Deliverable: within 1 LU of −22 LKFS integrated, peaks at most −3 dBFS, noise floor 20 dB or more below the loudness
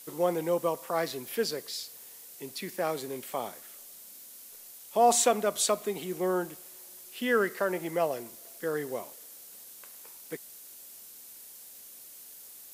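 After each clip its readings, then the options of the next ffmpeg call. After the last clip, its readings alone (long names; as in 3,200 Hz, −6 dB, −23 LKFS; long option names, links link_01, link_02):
background noise floor −49 dBFS; target noise floor −50 dBFS; integrated loudness −30.0 LKFS; sample peak −11.5 dBFS; target loudness −22.0 LKFS
→ -af "afftdn=noise_reduction=6:noise_floor=-49"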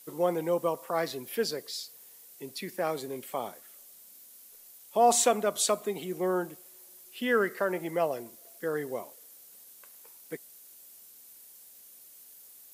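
background noise floor −53 dBFS; integrated loudness −30.0 LKFS; sample peak −11.5 dBFS; target loudness −22.0 LKFS
→ -af "volume=8dB"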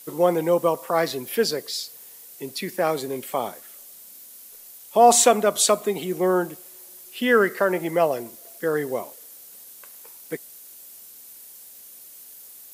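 integrated loudness −22.0 LKFS; sample peak −3.5 dBFS; background noise floor −45 dBFS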